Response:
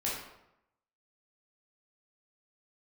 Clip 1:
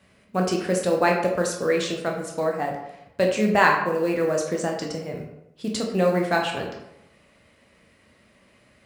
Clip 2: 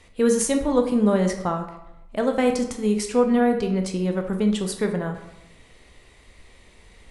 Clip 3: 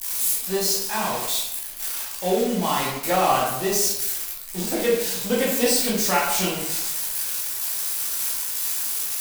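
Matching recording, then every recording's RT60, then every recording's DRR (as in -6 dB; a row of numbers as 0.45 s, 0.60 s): 3; 0.85 s, 0.85 s, 0.85 s; 0.0 dB, 4.5 dB, -6.5 dB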